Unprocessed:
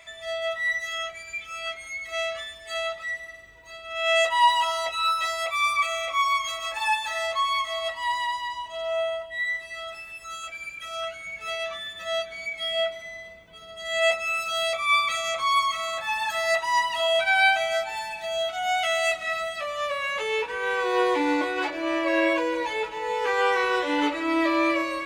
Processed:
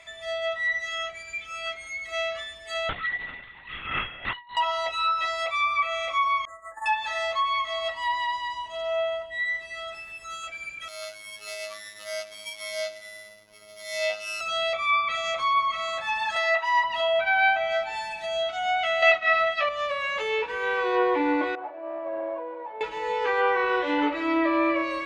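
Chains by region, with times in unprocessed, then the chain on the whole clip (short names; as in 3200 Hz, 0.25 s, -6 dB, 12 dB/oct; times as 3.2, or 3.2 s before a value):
2.89–4.57 HPF 900 Hz 24 dB/oct + negative-ratio compressor -31 dBFS, ratio -0.5 + LPC vocoder at 8 kHz whisper
6.45–6.86 expander -25 dBFS + brick-wall FIR band-stop 2000–6600 Hz
10.88–14.41 sample sorter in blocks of 8 samples + low shelf 200 Hz -10 dB + robotiser 105 Hz
16.36–16.84 HPF 380 Hz 24 dB/oct + tilt shelf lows -4.5 dB, about 840 Hz
19.02–19.69 expander -31 dBFS + EQ curve 190 Hz 0 dB, 960 Hz +8 dB, 5600 Hz +12 dB, 14000 Hz -6 dB
21.55–22.81 delta modulation 32 kbps, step -37 dBFS + band-pass 730 Hz, Q 2.9 + air absorption 320 m
whole clip: high shelf 8900 Hz -4.5 dB; treble ducked by the level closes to 2300 Hz, closed at -19 dBFS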